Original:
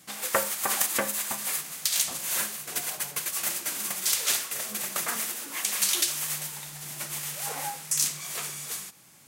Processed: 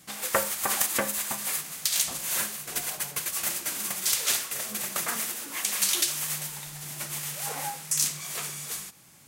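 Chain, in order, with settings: bass shelf 89 Hz +10 dB

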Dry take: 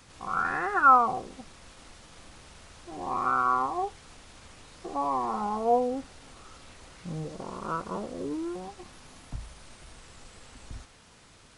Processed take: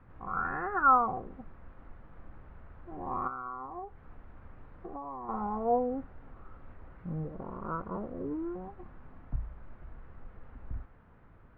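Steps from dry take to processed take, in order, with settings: tilt EQ -2.5 dB/octave; 3.27–5.29 s: compression 12:1, threshold -32 dBFS, peak gain reduction 11.5 dB; four-pole ladder low-pass 2 kHz, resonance 30%

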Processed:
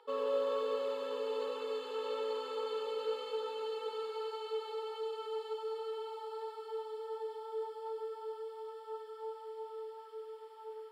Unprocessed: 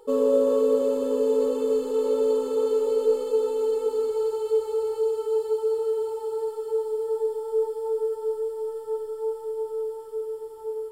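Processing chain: Bessel high-pass 2.1 kHz, order 2; distance through air 370 m; feedback echo behind a high-pass 96 ms, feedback 71%, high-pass 2.8 kHz, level -4 dB; trim +9 dB

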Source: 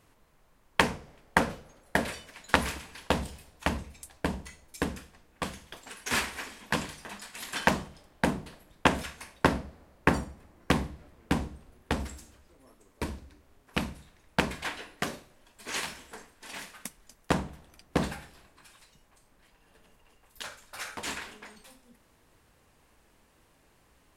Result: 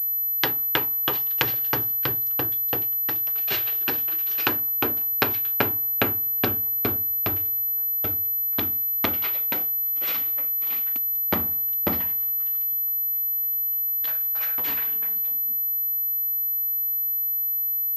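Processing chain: gliding tape speed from 184% -> 85%; class-D stage that switches slowly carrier 12 kHz; trim +1 dB

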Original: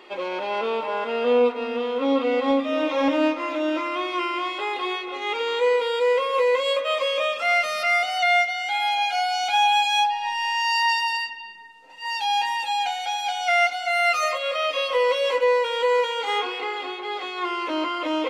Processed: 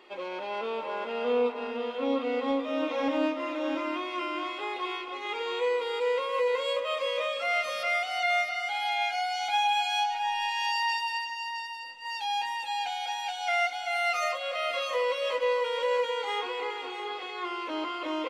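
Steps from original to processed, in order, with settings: delay 665 ms -7.5 dB; trim -7.5 dB

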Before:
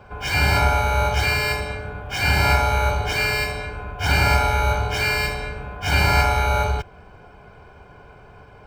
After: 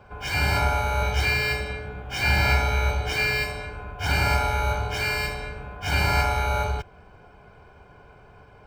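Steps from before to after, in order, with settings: 1.01–3.43 s: doubling 16 ms -5.5 dB; trim -4.5 dB

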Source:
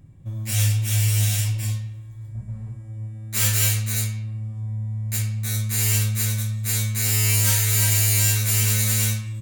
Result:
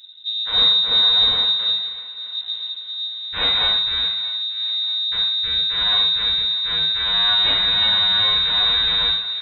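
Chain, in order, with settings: feedback echo behind a band-pass 632 ms, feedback 52%, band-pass 1.3 kHz, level -14 dB; frequency inversion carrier 3.8 kHz; trim +3.5 dB

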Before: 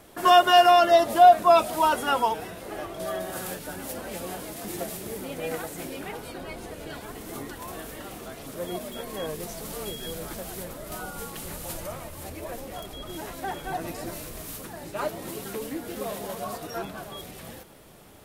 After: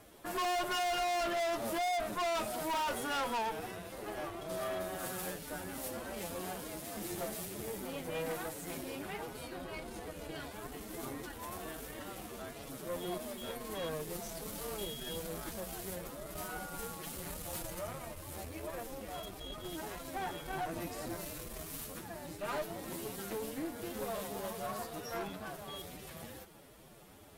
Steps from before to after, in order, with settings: time stretch by phase-locked vocoder 1.5×; valve stage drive 30 dB, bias 0.65; trim -2 dB

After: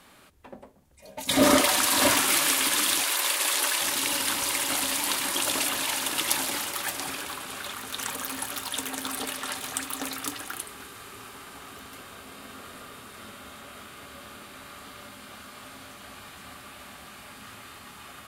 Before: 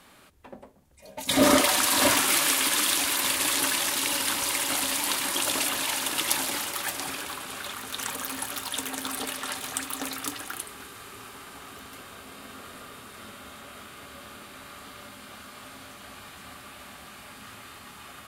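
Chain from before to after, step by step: 3.01–3.81 s: high-pass 380 Hz 24 dB/octave

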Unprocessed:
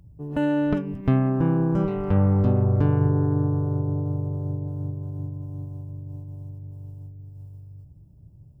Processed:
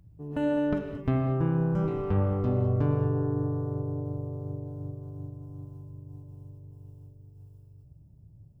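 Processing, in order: gated-style reverb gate 250 ms flat, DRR 4.5 dB; trim -5.5 dB

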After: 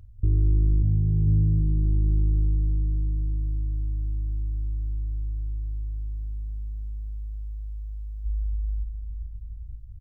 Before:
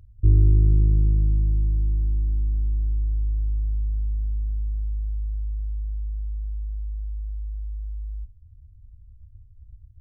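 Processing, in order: bouncing-ball echo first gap 590 ms, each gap 0.75×, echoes 5; peak limiter -16 dBFS, peak gain reduction 8 dB; simulated room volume 820 m³, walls furnished, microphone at 0.45 m; trim +2 dB

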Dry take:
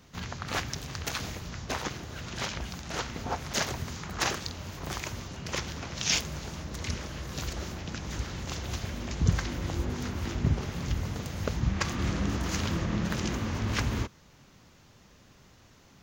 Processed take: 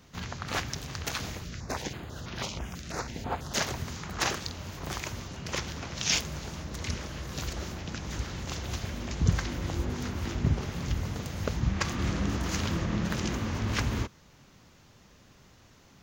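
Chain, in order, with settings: 1.44–3.54 s: step-sequenced notch 6.1 Hz 900–7800 Hz

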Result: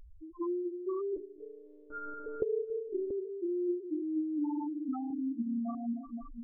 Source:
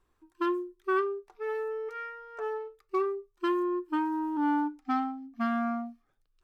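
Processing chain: jump at every zero crossing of -45 dBFS; treble shelf 2.6 kHz +5 dB; compression 3:1, threshold -34 dBFS, peak gain reduction 9.5 dB; on a send: delay with an opening low-pass 246 ms, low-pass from 750 Hz, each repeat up 1 oct, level -6 dB; on the sum: loudest bins only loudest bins 2; in parallel at +3 dB: gain riding within 5 dB 2 s; 1.16–3.11 s: on the sum: monotone LPC vocoder at 8 kHz 300 Hz; 5.07–5.75 s: doubling 33 ms -2.5 dB; trim -4.5 dB

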